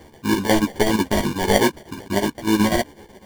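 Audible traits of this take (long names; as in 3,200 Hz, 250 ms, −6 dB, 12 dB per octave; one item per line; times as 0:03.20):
chopped level 8.1 Hz, depth 65%, duty 70%
aliases and images of a low sample rate 1,300 Hz, jitter 0%
a shimmering, thickened sound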